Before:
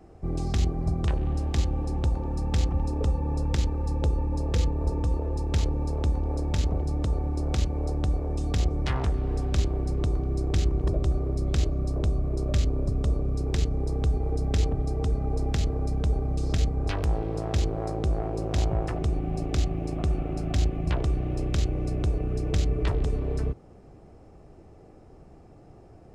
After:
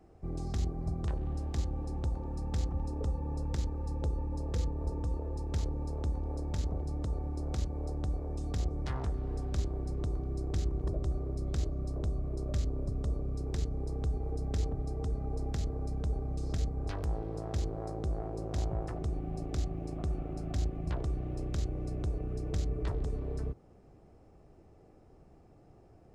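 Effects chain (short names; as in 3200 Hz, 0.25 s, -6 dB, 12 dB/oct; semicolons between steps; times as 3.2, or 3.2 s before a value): dynamic EQ 2700 Hz, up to -7 dB, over -55 dBFS, Q 1.4; gain -8 dB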